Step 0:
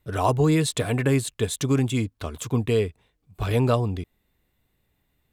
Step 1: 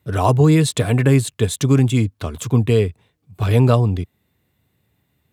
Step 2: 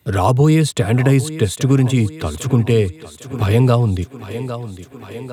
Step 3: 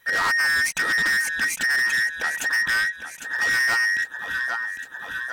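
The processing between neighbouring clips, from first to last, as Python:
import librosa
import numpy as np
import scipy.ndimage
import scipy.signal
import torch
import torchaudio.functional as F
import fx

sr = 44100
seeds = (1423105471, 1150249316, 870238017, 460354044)

y1 = scipy.signal.sosfilt(scipy.signal.butter(4, 89.0, 'highpass', fs=sr, output='sos'), x)
y1 = fx.low_shelf(y1, sr, hz=130.0, db=10.5)
y1 = y1 * librosa.db_to_amplitude(4.0)
y2 = fx.echo_thinned(y1, sr, ms=804, feedback_pct=53, hz=160.0, wet_db=-15.0)
y2 = fx.band_squash(y2, sr, depth_pct=40)
y2 = y2 * librosa.db_to_amplitude(1.0)
y3 = fx.band_invert(y2, sr, width_hz=2000)
y3 = 10.0 ** (-19.0 / 20.0) * np.tanh(y3 / 10.0 ** (-19.0 / 20.0))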